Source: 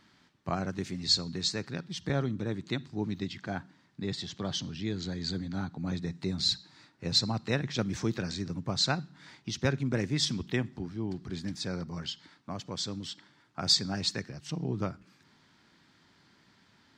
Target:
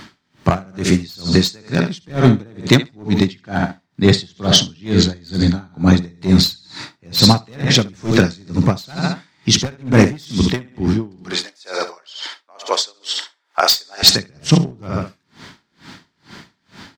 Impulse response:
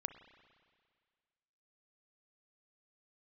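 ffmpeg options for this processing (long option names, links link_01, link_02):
-filter_complex "[0:a]asettb=1/sr,asplit=3[link_01][link_02][link_03];[link_01]atrim=end=11.254[link_04];[link_02]atrim=start=11.25:end=14.03,asetpts=PTS-STARTPTS,afade=type=in:duration=0.004:curve=qsin,afade=type=out:start_time=2.776:duration=0.004:curve=qsin,highpass=frequency=480:width=0.5412,highpass=frequency=480:width=1.3066[link_05];[link_03]atrim=start=14.026[link_06];[link_04][link_05]acrossfade=duration=0.004:curve1=hsin:curve2=qsin[link_07];[link_07][link_06]acrossfade=duration=0.004:curve1=qsin:curve2=hsin,aecho=1:1:69|138|207|276:0.316|0.133|0.0558|0.0234,asoftclip=type=hard:threshold=-25.5dB[link_08];[1:a]atrim=start_sample=2205,atrim=end_sample=3528[link_09];[link_08][link_09]afir=irnorm=-1:irlink=0,alimiter=level_in=28.5dB:limit=-1dB:release=50:level=0:latency=1,aeval=exprs='val(0)*pow(10,-33*(0.5-0.5*cos(2*PI*2.2*n/s))/20)':channel_layout=same"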